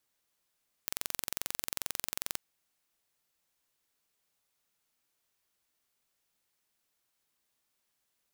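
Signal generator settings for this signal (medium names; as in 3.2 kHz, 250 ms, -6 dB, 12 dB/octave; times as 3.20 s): pulse train 22.4 per s, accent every 0, -6 dBFS 1.49 s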